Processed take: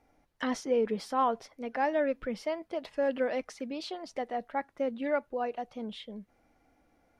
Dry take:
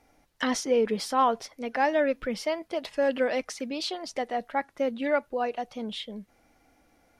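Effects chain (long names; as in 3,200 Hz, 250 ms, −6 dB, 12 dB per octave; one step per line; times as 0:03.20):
high-shelf EQ 2,600 Hz −8.5 dB
level −3.5 dB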